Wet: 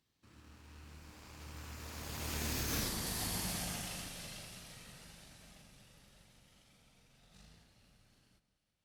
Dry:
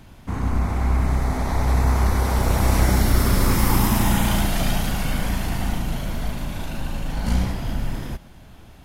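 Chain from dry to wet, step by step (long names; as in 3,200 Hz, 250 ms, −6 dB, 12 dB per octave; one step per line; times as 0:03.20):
source passing by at 0:02.85, 56 m/s, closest 3.6 metres
high-shelf EQ 10,000 Hz +10.5 dB
in parallel at −5 dB: sample-rate reduction 1,400 Hz
on the sum: parametric band 4,600 Hz +13.5 dB 2.5 octaves
on a send: delay that swaps between a low-pass and a high-pass 173 ms, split 1,300 Hz, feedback 57%, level −13 dB
on the sum: downward compressor 16 to 1, threshold −26 dBFS, peak gain reduction 17.5 dB
high-pass filter 99 Hz 6 dB per octave
level −5 dB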